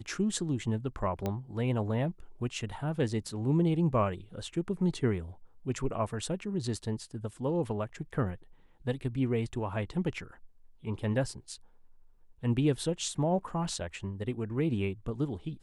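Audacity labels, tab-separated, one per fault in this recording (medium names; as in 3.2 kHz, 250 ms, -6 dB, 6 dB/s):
1.260000	1.260000	pop -19 dBFS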